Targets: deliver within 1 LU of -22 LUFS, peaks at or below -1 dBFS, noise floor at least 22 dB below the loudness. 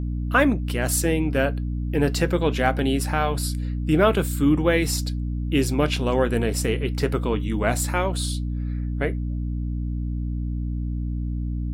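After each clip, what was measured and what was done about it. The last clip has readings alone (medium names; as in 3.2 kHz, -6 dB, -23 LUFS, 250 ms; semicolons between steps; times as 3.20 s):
hum 60 Hz; highest harmonic 300 Hz; hum level -24 dBFS; loudness -24.0 LUFS; peak level -4.5 dBFS; loudness target -22.0 LUFS
-> de-hum 60 Hz, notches 5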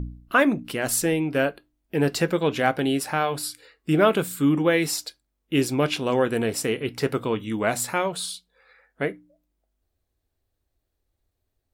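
hum not found; loudness -24.0 LUFS; peak level -5.0 dBFS; loudness target -22.0 LUFS
-> trim +2 dB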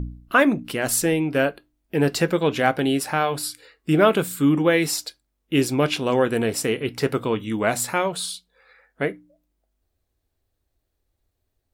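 loudness -22.0 LUFS; peak level -3.0 dBFS; noise floor -76 dBFS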